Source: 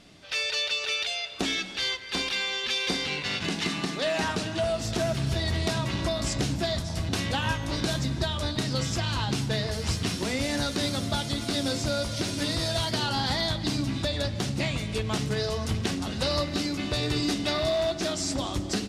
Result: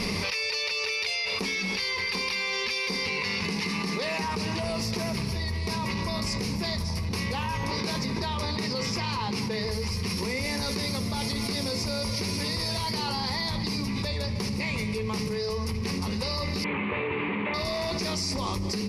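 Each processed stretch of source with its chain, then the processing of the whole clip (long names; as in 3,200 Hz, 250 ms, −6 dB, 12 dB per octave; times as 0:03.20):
0:07.63–0:09.61: high-pass filter 160 Hz 6 dB per octave + high-shelf EQ 7,200 Hz −8.5 dB
0:16.64–0:17.54: linear delta modulator 16 kbit/s, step −26 dBFS + high-pass filter 140 Hz
whole clip: EQ curve with evenly spaced ripples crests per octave 0.86, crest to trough 13 dB; envelope flattener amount 100%; level −8.5 dB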